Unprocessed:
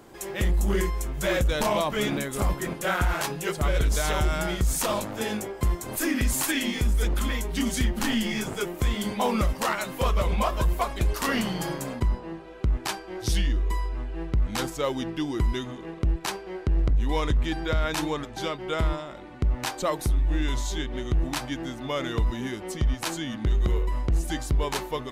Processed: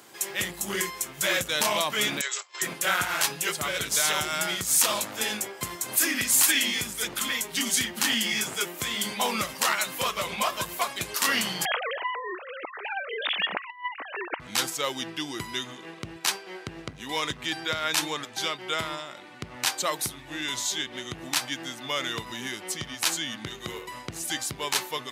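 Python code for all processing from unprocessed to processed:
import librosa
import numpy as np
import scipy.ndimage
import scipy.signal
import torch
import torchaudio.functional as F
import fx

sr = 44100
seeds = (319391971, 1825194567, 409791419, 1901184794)

y = fx.chain(x, sr, fx.peak_eq(hz=540.0, db=-13.5, octaves=1.8),
    fx.over_compress(threshold_db=-36.0, ratio=-1.0),
    fx.brickwall_bandpass(low_hz=350.0, high_hz=8000.0), at=(2.21, 2.62))
y = fx.chain(y, sr, fx.sine_speech(),
    fx.highpass(hz=510.0, slope=12),
    fx.over_compress(threshold_db=-29.0, ratio=-0.5), at=(11.65, 14.4))
y = scipy.signal.sosfilt(scipy.signal.butter(4, 110.0, 'highpass', fs=sr, output='sos'), y)
y = fx.tilt_shelf(y, sr, db=-8.5, hz=1100.0)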